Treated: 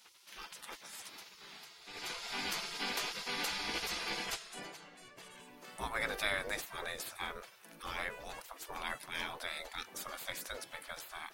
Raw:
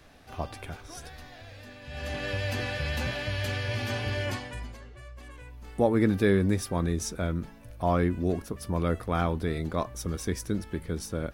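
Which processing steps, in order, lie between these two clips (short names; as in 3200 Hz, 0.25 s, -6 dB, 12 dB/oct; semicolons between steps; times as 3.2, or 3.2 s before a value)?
spectral gate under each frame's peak -20 dB weak; gain +4 dB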